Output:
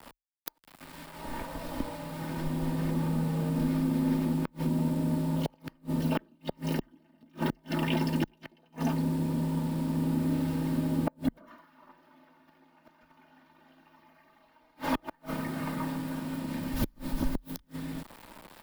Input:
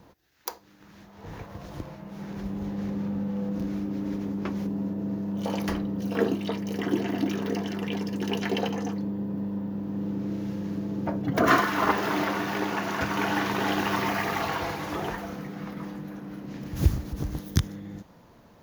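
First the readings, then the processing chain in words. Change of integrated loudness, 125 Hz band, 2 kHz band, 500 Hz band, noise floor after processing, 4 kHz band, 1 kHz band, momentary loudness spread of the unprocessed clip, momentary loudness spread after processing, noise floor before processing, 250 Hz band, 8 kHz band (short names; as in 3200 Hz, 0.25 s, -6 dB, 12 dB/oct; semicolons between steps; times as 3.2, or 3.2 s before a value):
-2.5 dB, 0.0 dB, -11.5 dB, -7.5 dB, -65 dBFS, -7.5 dB, -9.5 dB, 13 LU, 13 LU, -55 dBFS, -2.0 dB, -5.5 dB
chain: comb 3.2 ms, depth 76%; requantised 8-bit, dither none; thirty-one-band EQ 100 Hz -7 dB, 1000 Hz +4 dB, 6300 Hz -9 dB; flipped gate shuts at -18 dBFS, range -38 dB; frequency shift -39 Hz; gain +2 dB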